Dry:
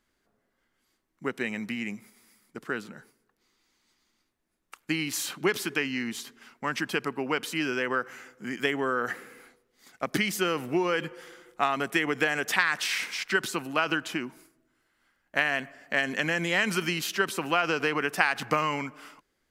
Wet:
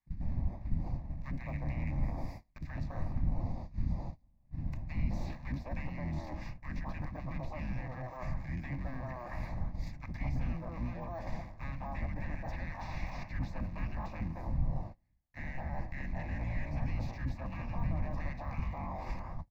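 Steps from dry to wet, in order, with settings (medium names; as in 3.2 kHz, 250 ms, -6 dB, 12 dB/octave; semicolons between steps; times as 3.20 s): cycle switcher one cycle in 3, inverted; wind noise 320 Hz -42 dBFS; tilt shelf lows -4 dB, about 670 Hz; three bands offset in time highs, lows, mids 60/210 ms, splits 330/1300 Hz; in parallel at -11 dB: decimation with a swept rate 25×, swing 60% 0.6 Hz; on the sum: saturation -20 dBFS, distortion -12 dB; de-esser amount 100%; de-hum 105.8 Hz, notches 31; gate -54 dBFS, range -26 dB; reverse; compression 10:1, threshold -47 dBFS, peak gain reduction 20.5 dB; reverse; RIAA curve playback; static phaser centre 2.1 kHz, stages 8; trim +8 dB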